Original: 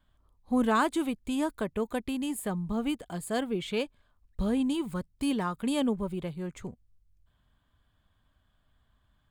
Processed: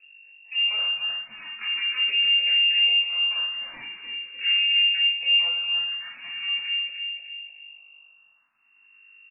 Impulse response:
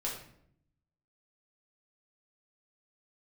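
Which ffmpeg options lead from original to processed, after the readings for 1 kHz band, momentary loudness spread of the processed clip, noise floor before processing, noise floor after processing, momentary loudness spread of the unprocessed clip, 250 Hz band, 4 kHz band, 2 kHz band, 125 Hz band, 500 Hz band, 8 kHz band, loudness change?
below −10 dB, 16 LU, −71 dBFS, −60 dBFS, 10 LU, below −30 dB, can't be measured, +18.5 dB, below −25 dB, below −20 dB, below −35 dB, +10.0 dB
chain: -filter_complex "[0:a]highpass=frequency=280:poles=1,acompressor=threshold=-36dB:ratio=10,aeval=exprs='max(val(0),0)':channel_layout=same,acrusher=bits=9:dc=4:mix=0:aa=0.000001,aeval=exprs='val(0)+0.00112*(sin(2*PI*50*n/s)+sin(2*PI*2*50*n/s)/2+sin(2*PI*3*50*n/s)/3+sin(2*PI*4*50*n/s)/4+sin(2*PI*5*50*n/s)/5)':channel_layout=same,aecho=1:1:302|604|906|1208|1510:0.398|0.171|0.0736|0.0317|0.0136[link_01];[1:a]atrim=start_sample=2205[link_02];[link_01][link_02]afir=irnorm=-1:irlink=0,lowpass=frequency=2400:width_type=q:width=0.5098,lowpass=frequency=2400:width_type=q:width=0.6013,lowpass=frequency=2400:width_type=q:width=0.9,lowpass=frequency=2400:width_type=q:width=2.563,afreqshift=-2800,asplit=2[link_03][link_04];[link_04]afreqshift=0.42[link_05];[link_03][link_05]amix=inputs=2:normalize=1,volume=7.5dB"

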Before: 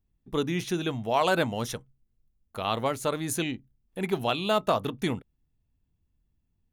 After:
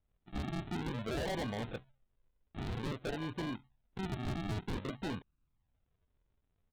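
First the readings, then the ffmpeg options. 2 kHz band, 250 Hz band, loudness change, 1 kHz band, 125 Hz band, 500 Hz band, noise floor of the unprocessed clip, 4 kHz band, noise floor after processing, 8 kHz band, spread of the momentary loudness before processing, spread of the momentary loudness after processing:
−11.5 dB, −8.0 dB, −11.0 dB, −15.0 dB, −5.0 dB, −14.0 dB, −75 dBFS, −13.0 dB, −80 dBFS, −18.0 dB, 11 LU, 9 LU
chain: -af "aresample=8000,acrusher=samples=11:mix=1:aa=0.000001:lfo=1:lforange=11:lforate=0.52,aresample=44100,asoftclip=type=hard:threshold=-29dB,volume=-5dB"

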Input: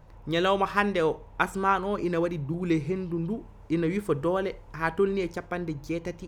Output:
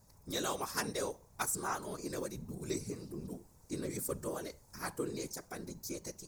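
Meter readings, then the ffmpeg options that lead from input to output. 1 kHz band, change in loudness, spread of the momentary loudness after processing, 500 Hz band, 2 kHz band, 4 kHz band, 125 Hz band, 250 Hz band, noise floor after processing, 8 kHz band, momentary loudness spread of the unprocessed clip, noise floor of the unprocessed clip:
−13.5 dB, −11.5 dB, 9 LU, −13.5 dB, −13.5 dB, −6.0 dB, −13.0 dB, −13.5 dB, −63 dBFS, can't be measured, 9 LU, −49 dBFS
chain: -af "aeval=exprs='0.473*(cos(1*acos(clip(val(0)/0.473,-1,1)))-cos(1*PI/2))+0.0335*(cos(3*acos(clip(val(0)/0.473,-1,1)))-cos(3*PI/2))':channel_layout=same,afftfilt=real='hypot(re,im)*cos(2*PI*random(0))':imag='hypot(re,im)*sin(2*PI*random(1))':win_size=512:overlap=0.75,aexciter=amount=11.6:drive=7:freq=4600,volume=-5.5dB"

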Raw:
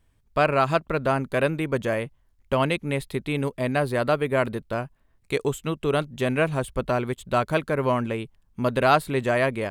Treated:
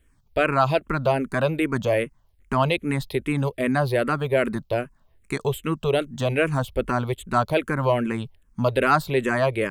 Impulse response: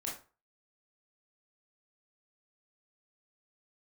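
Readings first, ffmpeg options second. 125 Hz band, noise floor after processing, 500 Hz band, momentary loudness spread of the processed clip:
+2.5 dB, −61 dBFS, +1.0 dB, 8 LU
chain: -filter_complex "[0:a]asplit=2[link_01][link_02];[link_02]alimiter=limit=-17dB:level=0:latency=1:release=20,volume=0dB[link_03];[link_01][link_03]amix=inputs=2:normalize=0,asplit=2[link_04][link_05];[link_05]afreqshift=-2.5[link_06];[link_04][link_06]amix=inputs=2:normalize=1"

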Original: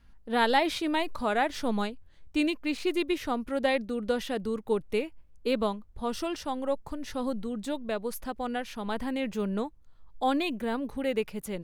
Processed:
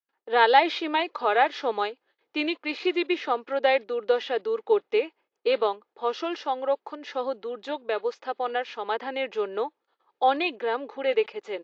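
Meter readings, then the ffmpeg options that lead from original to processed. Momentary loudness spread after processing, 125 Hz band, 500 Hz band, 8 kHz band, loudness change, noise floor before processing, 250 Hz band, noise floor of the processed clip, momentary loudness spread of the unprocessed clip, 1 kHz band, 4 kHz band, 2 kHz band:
9 LU, below −15 dB, +5.5 dB, below −10 dB, +4.0 dB, −54 dBFS, −4.0 dB, −82 dBFS, 7 LU, +6.5 dB, +4.0 dB, +5.0 dB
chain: -filter_complex "[0:a]agate=range=-37dB:threshold=-50dB:ratio=16:detection=peak,highpass=frequency=380:width=0.5412,highpass=frequency=380:width=1.3066,aecho=1:1:2.4:0.31,acrossover=split=4600[link_01][link_02];[link_02]acrusher=bits=2:mix=0:aa=0.5[link_03];[link_01][link_03]amix=inputs=2:normalize=0,volume=5.5dB" -ar 16000 -c:a aac -b:a 48k

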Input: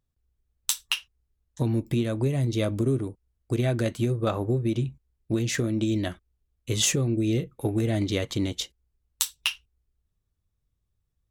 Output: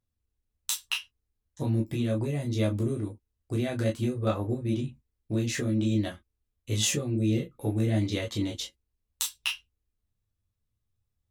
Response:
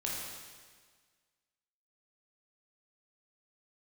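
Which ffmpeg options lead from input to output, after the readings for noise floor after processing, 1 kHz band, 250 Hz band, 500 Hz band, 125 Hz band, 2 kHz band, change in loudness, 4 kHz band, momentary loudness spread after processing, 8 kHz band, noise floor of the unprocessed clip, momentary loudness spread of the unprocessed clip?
−83 dBFS, −3.0 dB, −2.0 dB, −3.5 dB, −2.5 dB, −2.5 dB, −2.5 dB, −3.0 dB, 8 LU, −3.5 dB, −78 dBFS, 7 LU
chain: -filter_complex "[1:a]atrim=start_sample=2205,atrim=end_sample=3087,asetrate=70560,aresample=44100[link_01];[0:a][link_01]afir=irnorm=-1:irlink=0"

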